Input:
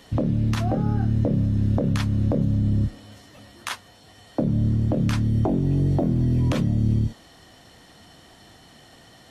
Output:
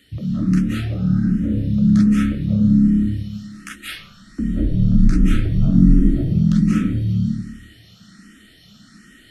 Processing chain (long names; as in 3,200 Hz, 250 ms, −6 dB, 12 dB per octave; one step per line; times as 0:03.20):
0:03.68–0:06.07: sub-octave generator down 2 octaves, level +2 dB
drawn EQ curve 130 Hz 0 dB, 190 Hz +11 dB, 930 Hz −25 dB, 1,300 Hz +2 dB
convolution reverb RT60 0.95 s, pre-delay 148 ms, DRR −7 dB
frequency shifter mixed with the dry sound +1.3 Hz
level −3.5 dB